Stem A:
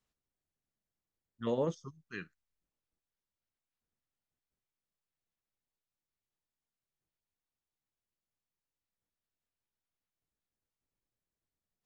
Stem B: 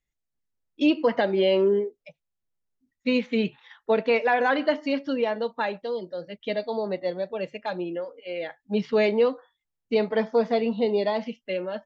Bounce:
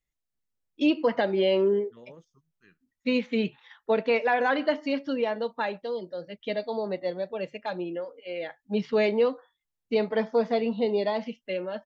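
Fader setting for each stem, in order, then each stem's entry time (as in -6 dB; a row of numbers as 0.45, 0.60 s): -17.0, -2.0 dB; 0.50, 0.00 s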